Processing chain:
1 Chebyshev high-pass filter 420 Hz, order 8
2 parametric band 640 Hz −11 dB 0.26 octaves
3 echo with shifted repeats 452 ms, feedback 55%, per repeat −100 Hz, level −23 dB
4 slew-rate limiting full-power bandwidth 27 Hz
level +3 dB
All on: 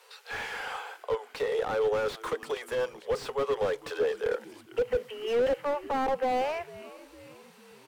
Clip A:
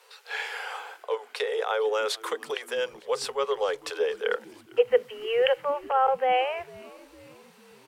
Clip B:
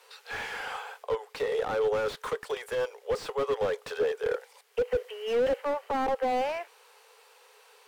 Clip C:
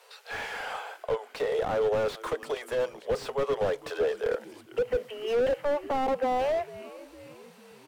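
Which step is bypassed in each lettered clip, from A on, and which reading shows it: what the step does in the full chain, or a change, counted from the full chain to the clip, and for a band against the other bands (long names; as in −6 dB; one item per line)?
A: 4, distortion level −2 dB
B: 3, change in momentary loudness spread −2 LU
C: 2, 125 Hz band +3.0 dB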